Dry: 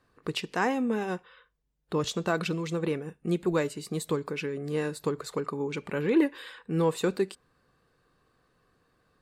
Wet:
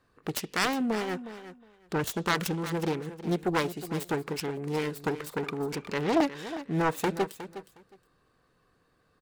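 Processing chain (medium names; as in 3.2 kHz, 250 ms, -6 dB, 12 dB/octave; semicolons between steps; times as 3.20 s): self-modulated delay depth 0.72 ms; feedback delay 362 ms, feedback 17%, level -13 dB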